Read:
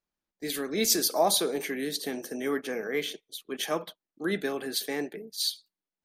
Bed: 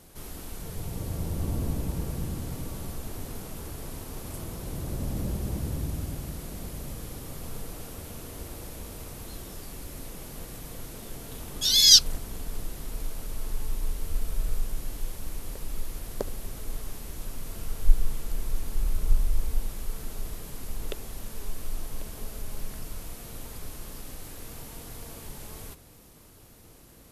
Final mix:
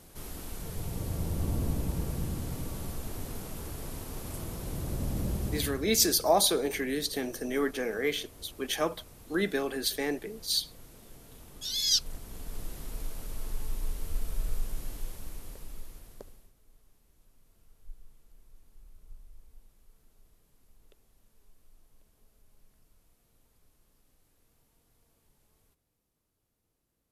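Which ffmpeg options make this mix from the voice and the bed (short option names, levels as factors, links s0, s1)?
-filter_complex "[0:a]adelay=5100,volume=1.06[s0];[1:a]volume=2.24,afade=t=out:st=5.46:d=0.41:silence=0.298538,afade=t=in:st=11.9:d=0.81:silence=0.398107,afade=t=out:st=14.86:d=1.67:silence=0.0630957[s1];[s0][s1]amix=inputs=2:normalize=0"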